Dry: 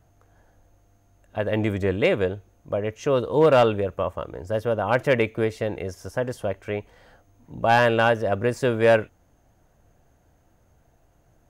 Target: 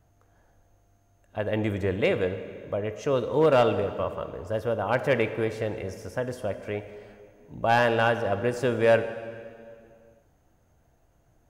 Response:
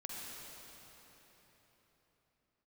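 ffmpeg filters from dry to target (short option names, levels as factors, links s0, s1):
-filter_complex "[0:a]asplit=2[s0][s1];[1:a]atrim=start_sample=2205,asetrate=88200,aresample=44100[s2];[s1][s2]afir=irnorm=-1:irlink=0,volume=0.944[s3];[s0][s3]amix=inputs=2:normalize=0,volume=0.531"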